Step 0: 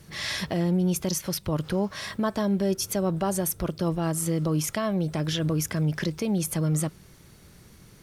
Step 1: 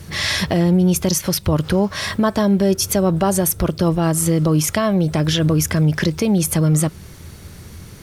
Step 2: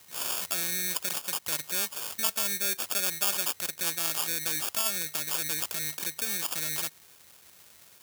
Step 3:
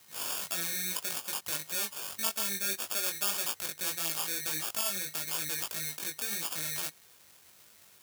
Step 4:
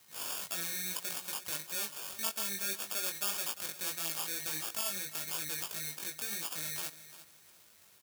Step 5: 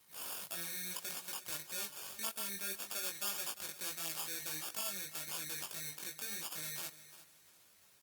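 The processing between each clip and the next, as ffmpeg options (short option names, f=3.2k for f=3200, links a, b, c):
-filter_complex "[0:a]equalizer=f=83:w=3.9:g=11.5,asplit=2[a][b];[b]acompressor=threshold=-31dB:ratio=6,volume=-3dB[c];[a][c]amix=inputs=2:normalize=0,volume=7dB"
-af "acrusher=samples=22:mix=1:aa=0.000001,aderivative"
-af "flanger=delay=18:depth=3.2:speed=1.7"
-af "aecho=1:1:348|696|1044:0.178|0.0498|0.0139,volume=-3.5dB"
-af "volume=-4dB" -ar 48000 -c:a libopus -b:a 32k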